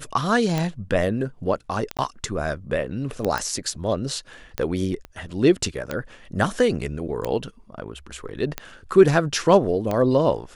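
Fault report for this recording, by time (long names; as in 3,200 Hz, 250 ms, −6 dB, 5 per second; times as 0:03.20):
scratch tick 45 rpm −11 dBFS
0:01.97–0:01.99: drop-out 17 ms
0:03.38: click
0:05.05: click −23 dBFS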